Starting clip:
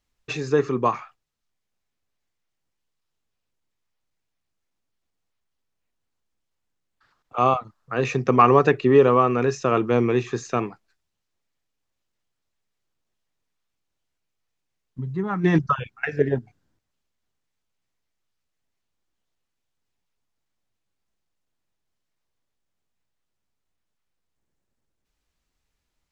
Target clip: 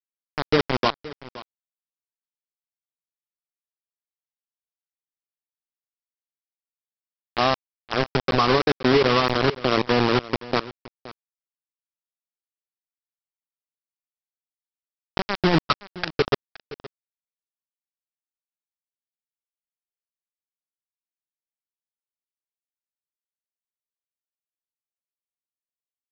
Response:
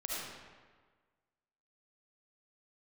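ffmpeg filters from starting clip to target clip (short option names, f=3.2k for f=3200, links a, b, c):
-af "lowpass=1.5k,acompressor=threshold=-33dB:ratio=1.5,aresample=11025,acrusher=bits=3:mix=0:aa=0.000001,aresample=44100,aecho=1:1:520:0.126,alimiter=level_in=12.5dB:limit=-1dB:release=50:level=0:latency=1,volume=-7.5dB"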